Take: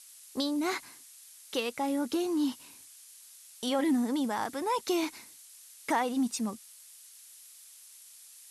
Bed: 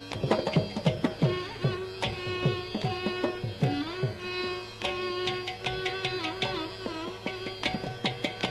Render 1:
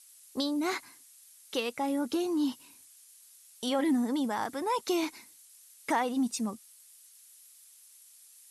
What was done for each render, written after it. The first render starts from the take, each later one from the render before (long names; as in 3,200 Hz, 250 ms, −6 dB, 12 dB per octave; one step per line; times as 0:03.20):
broadband denoise 6 dB, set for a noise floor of −53 dBFS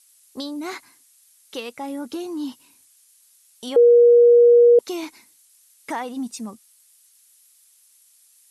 0:03.76–0:04.79: beep over 477 Hz −8.5 dBFS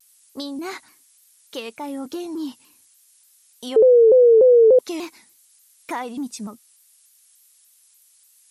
pitch modulation by a square or saw wave saw down 3.4 Hz, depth 160 cents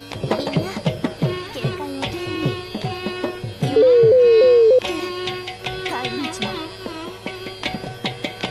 mix in bed +4.5 dB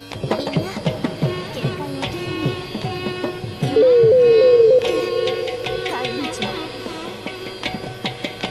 feedback delay with all-pass diffusion 611 ms, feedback 46%, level −10.5 dB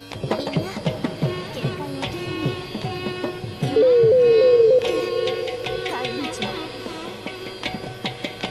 level −2.5 dB